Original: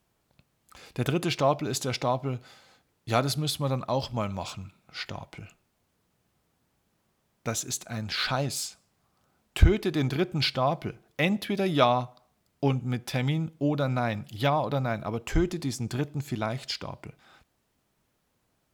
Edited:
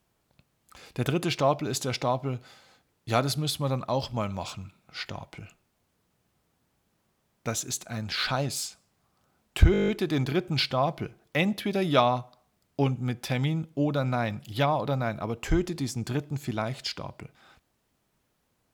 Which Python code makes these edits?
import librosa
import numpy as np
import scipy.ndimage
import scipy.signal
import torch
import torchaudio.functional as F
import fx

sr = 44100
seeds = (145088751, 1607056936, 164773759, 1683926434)

y = fx.edit(x, sr, fx.stutter(start_s=9.72, slice_s=0.02, count=9), tone=tone)